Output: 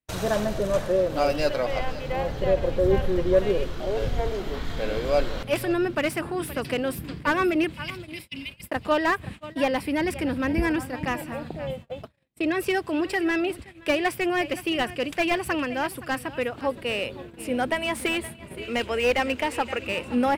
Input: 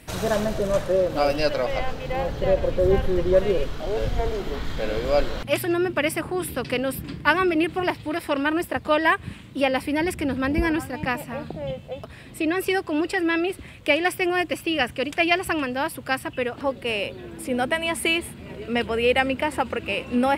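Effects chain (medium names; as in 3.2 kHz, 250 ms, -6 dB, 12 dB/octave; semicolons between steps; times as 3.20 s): 7.75–8.63 s: spectral replace 270–2000 Hz after; 18.62–19.87 s: fifteen-band graphic EQ 160 Hz -12 dB, 2.5 kHz +4 dB, 6.3 kHz +7 dB; delay 521 ms -17 dB; gate -36 dBFS, range -42 dB; slew-rate limiter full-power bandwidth 190 Hz; trim -1.5 dB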